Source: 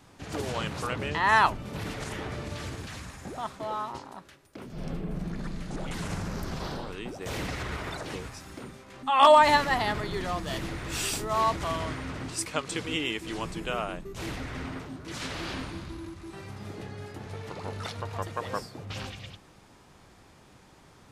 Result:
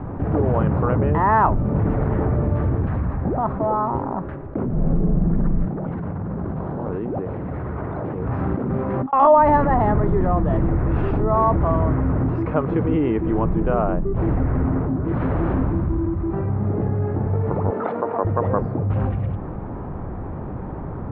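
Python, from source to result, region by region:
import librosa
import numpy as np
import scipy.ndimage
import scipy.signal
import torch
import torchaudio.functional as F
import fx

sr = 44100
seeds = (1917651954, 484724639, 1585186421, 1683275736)

y = fx.chain(x, sr, fx.cvsd(bps=32000),
    fx.highpass(hz=91.0, slope=12),
    fx.over_compress(threshold_db=-47.0, ratio=-1.0), at=(5.65, 9.13))
y = fx.chain(y, sr, fx.highpass(hz=250.0, slope=24),
    fx.high_shelf(hz=5600.0, db=-7.0), at=(17.7, 18.25))
y = scipy.signal.sosfilt(scipy.signal.bessel(4, 840.0, 'lowpass', norm='mag', fs=sr, output='sos'), y)
y = fx.low_shelf(y, sr, hz=160.0, db=6.5)
y = fx.env_flatten(y, sr, amount_pct=50)
y = F.gain(torch.from_numpy(y), 5.0).numpy()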